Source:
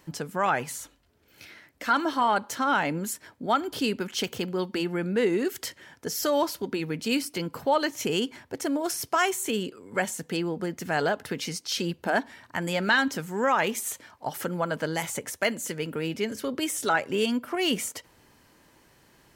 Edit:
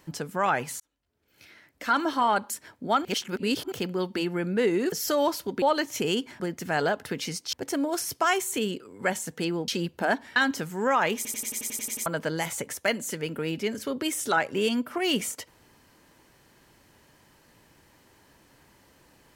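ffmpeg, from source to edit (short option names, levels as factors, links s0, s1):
-filter_complex "[0:a]asplit=21[s0][s1][s2][s3][s4][s5][s6][s7][s8][s9][s10][s11][s12][s13][s14][s15][s16][s17][s18][s19][s20];[s0]atrim=end=0.8,asetpts=PTS-STARTPTS,afade=t=out:st=0.796:d=0.004:c=hsin[s21];[s1]atrim=start=0.8:end=2.502,asetpts=PTS-STARTPTS,afade=t=in:d=1.2[s22];[s2]atrim=start=3.088:end=3.642[s23];[s3]atrim=start=3.638:end=4.312,asetpts=PTS-STARTPTS,areverse[s24];[s4]atrim=start=4.308:end=5.512[s25];[s5]atrim=start=6.068:end=6.772[s26];[s6]atrim=start=7.668:end=8.452[s27];[s7]atrim=start=10.598:end=11.732[s28];[s8]atrim=start=8.448:end=10.602[s29];[s9]atrim=start=11.728:end=12.412[s30];[s10]atrim=start=12.928:end=13.822[s31];[s11]atrim=start=13.728:end=13.822[s32];[s12]atrim=start=13.728:end=13.822[s33];[s13]atrim=start=13.728:end=13.822[s34];[s14]atrim=start=13.728:end=13.822[s35];[s15]atrim=start=13.728:end=13.822[s36];[s16]atrim=start=13.728:end=13.822[s37];[s17]atrim=start=13.728:end=13.822[s38];[s18]atrim=start=13.728:end=13.822[s39];[s19]atrim=start=13.728:end=13.822[s40];[s20]atrim=start=14.628[s41];[s21][s22]concat=n=2:v=0:a=1[s42];[s42][s23]acrossfade=d=0.004:c1=hsin:c2=hsin[s43];[s43][s24]acrossfade=d=0.004:c1=hsin:c2=hsin[s44];[s44][s25]acrossfade=d=0.004:c1=hsin:c2=hsin[s45];[s45][s26]acrossfade=d=0.004:c1=hsin:c2=hsin[s46];[s46][s27]acrossfade=d=0.004:c1=hsin:c2=hsin[s47];[s47][s28]acrossfade=d=0.004:c1=hsin:c2=hsin[s48];[s48][s29]acrossfade=d=0.004:c1=hsin:c2=hsin[s49];[s49][s30]acrossfade=d=0.004:c1=hsin:c2=hsin[s50];[s50][s31]acrossfade=d=0.004:c1=hsin:c2=hsin[s51];[s51][s32]acrossfade=d=0.004:c1=hsin:c2=hsin[s52];[s52][s33]acrossfade=d=0.004:c1=hsin:c2=hsin[s53];[s53][s34]acrossfade=d=0.004:c1=hsin:c2=hsin[s54];[s54][s35]acrossfade=d=0.004:c1=hsin:c2=hsin[s55];[s55][s36]acrossfade=d=0.004:c1=hsin:c2=hsin[s56];[s56][s37]acrossfade=d=0.004:c1=hsin:c2=hsin[s57];[s57][s38]acrossfade=d=0.004:c1=hsin:c2=hsin[s58];[s58][s39]acrossfade=d=0.004:c1=hsin:c2=hsin[s59];[s59][s40]acrossfade=d=0.004:c1=hsin:c2=hsin[s60];[s60][s41]acrossfade=d=0.004:c1=hsin:c2=hsin"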